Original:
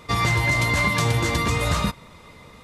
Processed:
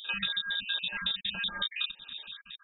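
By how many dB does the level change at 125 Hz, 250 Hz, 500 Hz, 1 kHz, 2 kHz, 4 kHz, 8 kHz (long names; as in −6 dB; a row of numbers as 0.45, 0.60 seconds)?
−32.5 dB, −22.0 dB, −28.5 dB, −22.0 dB, −11.0 dB, 0.0 dB, below −40 dB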